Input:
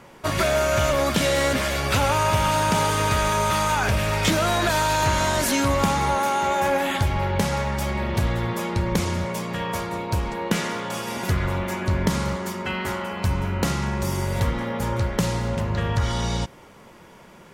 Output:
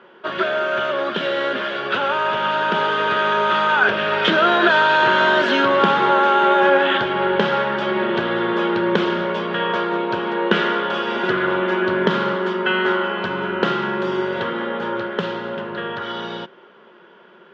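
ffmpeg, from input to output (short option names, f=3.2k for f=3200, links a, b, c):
-af "equalizer=f=300:w=5.5:g=-9.5,dynaudnorm=f=330:g=21:m=9dB,highpass=f=210:w=0.5412,highpass=f=210:w=1.3066,equalizer=f=250:t=q:w=4:g=-3,equalizer=f=370:t=q:w=4:g=10,equalizer=f=780:t=q:w=4:g=-3,equalizer=f=1.5k:t=q:w=4:g=9,equalizer=f=2.2k:t=q:w=4:g=-7,equalizer=f=3.2k:t=q:w=4:g=7,lowpass=f=3.3k:w=0.5412,lowpass=f=3.3k:w=1.3066,volume=-1dB"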